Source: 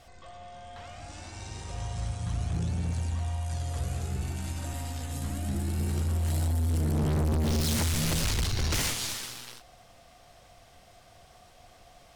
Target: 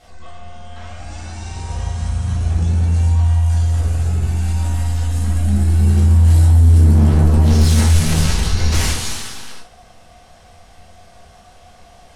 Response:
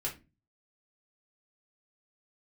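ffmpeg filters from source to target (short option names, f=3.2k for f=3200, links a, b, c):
-filter_complex "[0:a]asettb=1/sr,asplit=3[a][b][c];[a]atrim=end=3.644[d];[b]atrim=start=3.64:end=4.87,asetpts=PTS-STARTPTS,afade=t=in:d=0.004:c=qsin,afade=t=out:st=1.226:d=0.004:c=qsin,asoftclip=type=hard:threshold=-28.5dB[e];[c]atrim=start=4.866[f];[d][e]acrossfade=d=0.004:c1=hsin:c2=qsin[g];[g][f]acrossfade=d=0.004:c1=qsin:c2=hsin[h];[1:a]atrim=start_sample=2205,asetrate=24255,aresample=44100[i];[h][i]afir=irnorm=-1:irlink=0,volume=2.5dB"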